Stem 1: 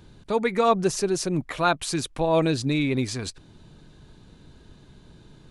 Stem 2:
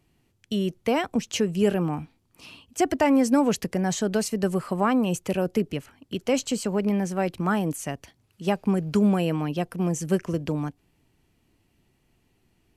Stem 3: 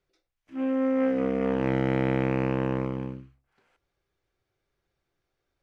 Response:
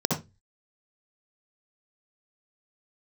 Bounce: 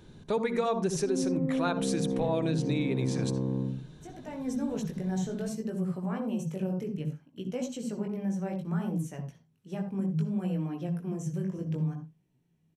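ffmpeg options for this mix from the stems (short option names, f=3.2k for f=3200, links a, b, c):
-filter_complex "[0:a]volume=-3.5dB,asplit=2[a][b];[b]volume=-19.5dB[c];[1:a]equalizer=f=150:t=o:w=0.77:g=7.5,alimiter=limit=-14.5dB:level=0:latency=1,flanger=delay=16:depth=5.5:speed=0.64,adelay=1250,volume=-12.5dB,afade=t=in:st=4.14:d=0.37:silence=0.298538,asplit=2[d][e];[e]volume=-15.5dB[f];[2:a]acrossover=split=260|950[g][h][i];[g]acompressor=threshold=-31dB:ratio=4[j];[h]acompressor=threshold=-34dB:ratio=4[k];[i]acompressor=threshold=-60dB:ratio=4[l];[j][k][l]amix=inputs=3:normalize=0,adelay=500,volume=-8dB,asplit=2[m][n];[n]volume=-8.5dB[o];[3:a]atrim=start_sample=2205[p];[c][f][o]amix=inputs=3:normalize=0[q];[q][p]afir=irnorm=-1:irlink=0[r];[a][d][m][r]amix=inputs=4:normalize=0,acompressor=threshold=-25dB:ratio=6"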